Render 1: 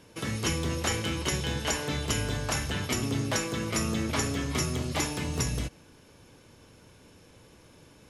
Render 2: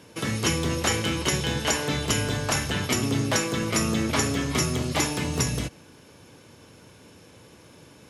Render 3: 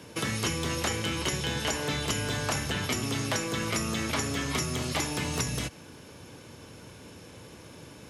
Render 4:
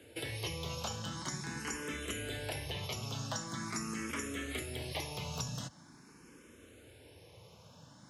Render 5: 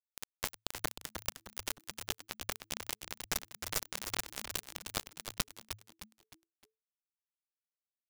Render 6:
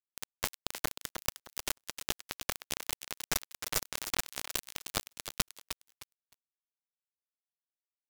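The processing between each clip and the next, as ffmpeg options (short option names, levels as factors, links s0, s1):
-af "highpass=85,volume=1.78"
-filter_complex "[0:a]acrossover=split=100|740[s0][s1][s2];[s0]acompressor=threshold=0.00447:ratio=4[s3];[s1]acompressor=threshold=0.0158:ratio=4[s4];[s2]acompressor=threshold=0.0224:ratio=4[s5];[s3][s4][s5]amix=inputs=3:normalize=0,lowshelf=f=62:g=5,volume=1.33"
-filter_complex "[0:a]asplit=2[s0][s1];[s1]afreqshift=0.44[s2];[s0][s2]amix=inputs=2:normalize=1,volume=0.473"
-filter_complex "[0:a]acrossover=split=3400[s0][s1];[s0]aeval=exprs='abs(val(0))':c=same[s2];[s2][s1]amix=inputs=2:normalize=0,acrusher=bits=4:mix=0:aa=0.000001,asplit=5[s3][s4][s5][s6][s7];[s4]adelay=308,afreqshift=-110,volume=0.422[s8];[s5]adelay=616,afreqshift=-220,volume=0.16[s9];[s6]adelay=924,afreqshift=-330,volume=0.061[s10];[s7]adelay=1232,afreqshift=-440,volume=0.0232[s11];[s3][s8][s9][s10][s11]amix=inputs=5:normalize=0,volume=2.24"
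-af "aeval=exprs='sgn(val(0))*max(abs(val(0))-0.00501,0)':c=same,volume=1.5"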